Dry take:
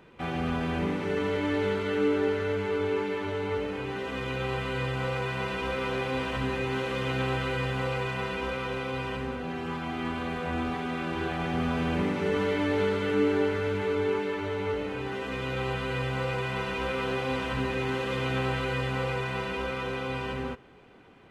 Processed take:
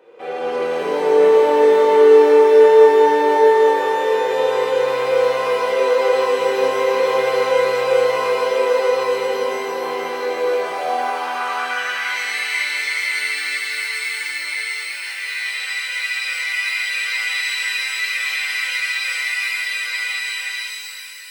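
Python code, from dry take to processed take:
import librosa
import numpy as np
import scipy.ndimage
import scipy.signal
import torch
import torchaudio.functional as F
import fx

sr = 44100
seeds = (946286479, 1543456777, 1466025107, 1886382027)

y = fx.filter_sweep_highpass(x, sr, from_hz=470.0, to_hz=2100.0, start_s=10.46, end_s=12.02, q=6.3)
y = fx.rev_shimmer(y, sr, seeds[0], rt60_s=3.5, semitones=12, shimmer_db=-8, drr_db=-7.0)
y = F.gain(torch.from_numpy(y), -3.0).numpy()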